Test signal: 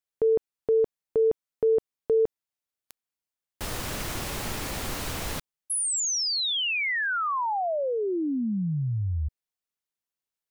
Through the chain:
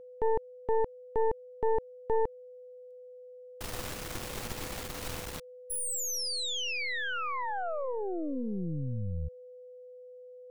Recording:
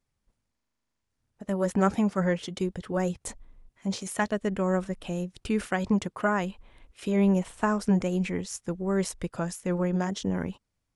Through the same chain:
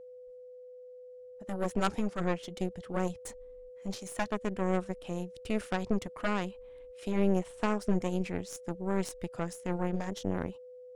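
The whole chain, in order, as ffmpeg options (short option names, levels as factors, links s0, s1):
-af "aeval=exprs='0.355*(cos(1*acos(clip(val(0)/0.355,-1,1)))-cos(1*PI/2))+0.158*(cos(2*acos(clip(val(0)/0.355,-1,1)))-cos(2*PI/2))+0.141*(cos(4*acos(clip(val(0)/0.355,-1,1)))-cos(4*PI/2))+0.02*(cos(8*acos(clip(val(0)/0.355,-1,1)))-cos(8*PI/2))':c=same,aeval=exprs='val(0)+0.0112*sin(2*PI*500*n/s)':c=same,volume=0.422"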